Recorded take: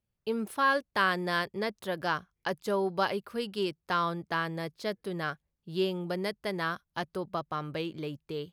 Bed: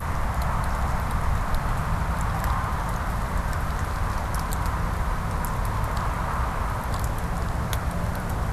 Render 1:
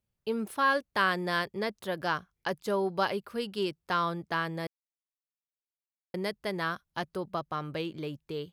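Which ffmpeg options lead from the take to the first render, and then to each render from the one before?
-filter_complex "[0:a]asplit=3[a][b][c];[a]atrim=end=4.67,asetpts=PTS-STARTPTS,afade=t=out:st=4.666:d=0.004:c=hsin[d];[b]atrim=start=4.67:end=6.14,asetpts=PTS-STARTPTS,volume=0[e];[c]atrim=start=6.14,asetpts=PTS-STARTPTS,afade=t=in:d=0.004:c=hsin[f];[d][e][f]concat=n=3:v=0:a=1"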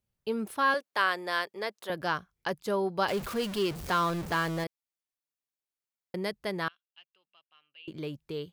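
-filter_complex "[0:a]asettb=1/sr,asplit=3[a][b][c];[a]atrim=end=0.744[d];[b]atrim=start=0.74:end=1.9,asetpts=PTS-STARTPTS,afade=t=in:d=0.004:c=qsin,afade=t=out:st=1.156:d=0.004:c=qsin,highpass=430[e];[c]atrim=start=1.896[f];[d][e]acrossfade=d=0.004:c1=hsin:c2=qsin[g];[g][f]acrossfade=d=0.004:c1=qsin:c2=hsin,asettb=1/sr,asplit=3[h][i][j];[h]atrim=end=3.084[k];[i]atrim=start=3.08:end=4.64,asetpts=PTS-STARTPTS,afade=t=in:d=0.004:c=qsin,afade=t=out:st=1.556:d=0.004:c=qsin,aeval=exprs='val(0)+0.5*0.0211*sgn(val(0))':c=same[l];[j]atrim=start=4.636[m];[k][l]acrossfade=d=0.004:c1=hsin:c2=qsin[n];[n][m]acrossfade=d=0.004:c1=qsin:c2=hsin,asettb=1/sr,asplit=3[o][p][q];[o]atrim=end=6.684[r];[p]atrim=start=6.68:end=7.88,asetpts=PTS-STARTPTS,afade=t=in:d=0.004:c=qsin,afade=t=out:st=1.196:d=0.004:c=qsin,bandpass=f=2.8k:t=q:w=18[s];[q]atrim=start=7.876[t];[r][s]acrossfade=d=0.004:c1=hsin:c2=qsin[u];[u][t]acrossfade=d=0.004:c1=qsin:c2=hsin"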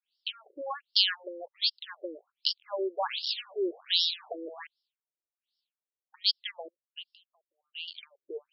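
-af "aexciter=amount=7.8:drive=7.4:freq=3k,afftfilt=real='re*between(b*sr/1024,400*pow(4000/400,0.5+0.5*sin(2*PI*1.3*pts/sr))/1.41,400*pow(4000/400,0.5+0.5*sin(2*PI*1.3*pts/sr))*1.41)':imag='im*between(b*sr/1024,400*pow(4000/400,0.5+0.5*sin(2*PI*1.3*pts/sr))/1.41,400*pow(4000/400,0.5+0.5*sin(2*PI*1.3*pts/sr))*1.41)':win_size=1024:overlap=0.75"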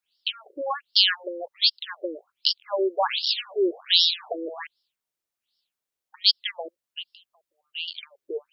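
-af "volume=7.5dB,alimiter=limit=-3dB:level=0:latency=1"

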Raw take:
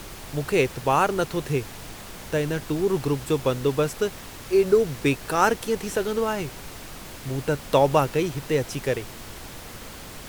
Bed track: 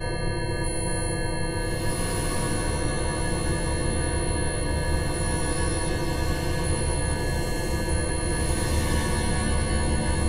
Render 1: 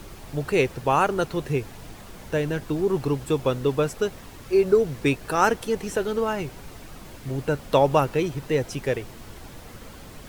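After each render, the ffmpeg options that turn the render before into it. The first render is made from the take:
-af "afftdn=nr=7:nf=-40"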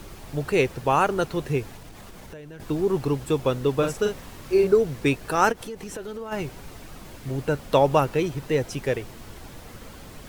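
-filter_complex "[0:a]asettb=1/sr,asplit=3[a][b][c];[a]atrim=end=1.754[d];[b]atrim=start=1.75:end=2.6,asetpts=PTS-STARTPTS,afade=t=in:d=0.004:c=qsin,afade=t=out:st=0.846:d=0.004:c=qsin,acompressor=threshold=-38dB:ratio=10:attack=3.2:release=140:knee=1:detection=peak[e];[c]atrim=start=2.596[f];[d][e]acrossfade=d=0.004:c1=hsin:c2=qsin[g];[g][f]acrossfade=d=0.004:c1=qsin:c2=hsin,asettb=1/sr,asplit=3[h][i][j];[h]atrim=end=3.744[k];[i]atrim=start=3.74:end=4.67,asetpts=PTS-STARTPTS,afade=t=in:d=0.004:c=qsin,afade=t=out:st=0.926:d=0.004:c=qsin,asplit=2[l][m];[m]adelay=43,volume=-4.5dB[n];[l][n]amix=inputs=2:normalize=0,atrim=end_sample=41013[o];[j]atrim=start=4.666[p];[k][o]acrossfade=d=0.004:c1=hsin:c2=qsin[q];[q][p]acrossfade=d=0.004:c1=qsin:c2=hsin,asplit=3[r][s][t];[r]afade=t=out:st=5.51:d=0.02[u];[s]acompressor=threshold=-32dB:ratio=5:attack=3.2:release=140:knee=1:detection=peak,afade=t=in:st=5.51:d=0.02,afade=t=out:st=6.31:d=0.02[v];[t]afade=t=in:st=6.31:d=0.02[w];[u][v][w]amix=inputs=3:normalize=0"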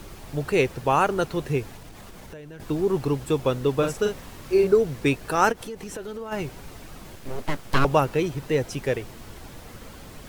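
-filter_complex "[0:a]asettb=1/sr,asplit=3[a][b][c];[a]atrim=end=7.154[d];[b]atrim=start=7.15:end=7.85,asetpts=PTS-STARTPTS,afade=t=in:d=0.004:c=qsin,afade=t=out:st=0.696:d=0.004:c=qsin,aeval=exprs='abs(val(0))':c=same[e];[c]atrim=start=7.846[f];[d][e]acrossfade=d=0.004:c1=hsin:c2=qsin[g];[g][f]acrossfade=d=0.004:c1=qsin:c2=hsin"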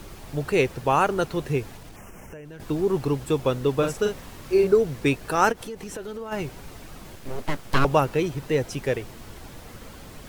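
-filter_complex "[0:a]asettb=1/sr,asplit=3[a][b][c];[a]atrim=end=1.964[d];[b]atrim=start=1.96:end=2.45,asetpts=PTS-STARTPTS,afade=t=in:d=0.004:c=qsin,afade=t=out:st=0.486:d=0.004:c=qsin,asuperstop=centerf=4000:order=8:qfactor=1.7[e];[c]atrim=start=2.446[f];[d][e]acrossfade=d=0.004:c1=hsin:c2=qsin[g];[g][f]acrossfade=d=0.004:c1=qsin:c2=hsin"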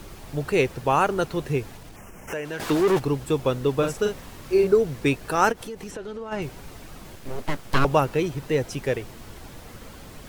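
-filter_complex "[0:a]asplit=3[a][b][c];[a]afade=t=out:st=2.27:d=0.02[d];[b]asplit=2[e][f];[f]highpass=f=720:p=1,volume=22dB,asoftclip=type=tanh:threshold=-12.5dB[g];[e][g]amix=inputs=2:normalize=0,lowpass=f=7.7k:p=1,volume=-6dB,afade=t=in:st=2.27:d=0.02,afade=t=out:st=2.98:d=0.02[h];[c]afade=t=in:st=2.98:d=0.02[i];[d][h][i]amix=inputs=3:normalize=0,asettb=1/sr,asplit=3[j][k][l];[j]atrim=end=5.914[m];[k]atrim=start=5.91:end=6.42,asetpts=PTS-STARTPTS,afade=t=in:d=0.004:c=qsin,afade=t=out:st=0.506:d=0.004:c=qsin,adynamicsmooth=sensitivity=2.5:basefreq=7.3k[n];[l]atrim=start=6.416[o];[m][n]acrossfade=d=0.004:c1=hsin:c2=qsin[p];[p][o]acrossfade=d=0.004:c1=qsin:c2=hsin"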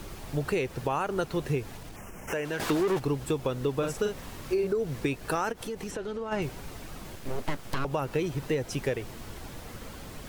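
-af "alimiter=limit=-15dB:level=0:latency=1:release=233,acompressor=threshold=-25dB:ratio=3"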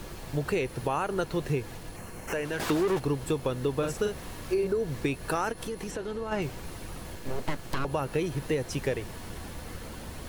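-filter_complex "[1:a]volume=-20.5dB[a];[0:a][a]amix=inputs=2:normalize=0"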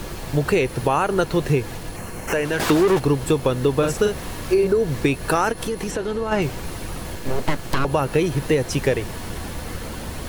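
-af "volume=9.5dB"

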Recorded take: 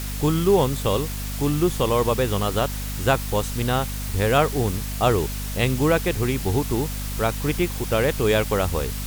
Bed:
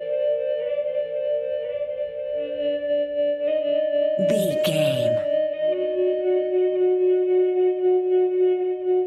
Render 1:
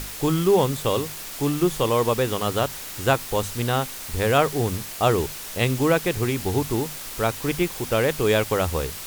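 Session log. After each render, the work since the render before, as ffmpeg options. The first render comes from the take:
-af "bandreject=f=50:t=h:w=6,bandreject=f=100:t=h:w=6,bandreject=f=150:t=h:w=6,bandreject=f=200:t=h:w=6,bandreject=f=250:t=h:w=6"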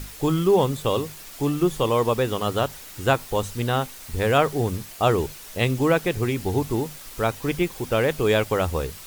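-af "afftdn=nr=7:nf=-36"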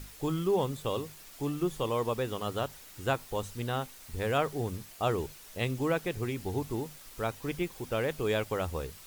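-af "volume=-9.5dB"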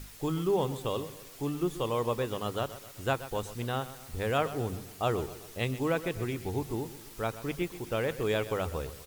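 -af "aecho=1:1:128|256|384|512:0.188|0.0904|0.0434|0.0208"

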